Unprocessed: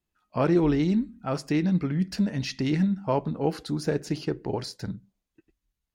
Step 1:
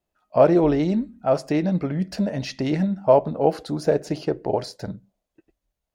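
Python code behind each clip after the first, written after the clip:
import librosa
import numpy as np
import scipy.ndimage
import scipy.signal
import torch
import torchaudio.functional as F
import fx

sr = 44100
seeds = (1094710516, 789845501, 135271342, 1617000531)

y = fx.peak_eq(x, sr, hz=620.0, db=14.5, octaves=0.89)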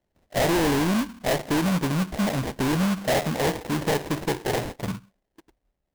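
y = fx.sample_hold(x, sr, seeds[0], rate_hz=1300.0, jitter_pct=20)
y = 10.0 ** (-23.5 / 20.0) * np.tanh(y / 10.0 ** (-23.5 / 20.0))
y = F.gain(torch.from_numpy(y), 4.0).numpy()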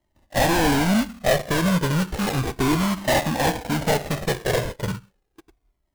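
y = fx.comb_cascade(x, sr, direction='falling', hz=0.34)
y = F.gain(torch.from_numpy(y), 8.0).numpy()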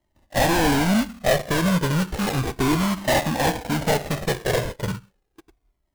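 y = x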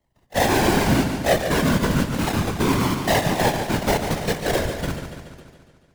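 y = fx.whisperise(x, sr, seeds[1])
y = fx.echo_warbled(y, sr, ms=143, feedback_pct=60, rate_hz=2.8, cents=92, wet_db=-8.0)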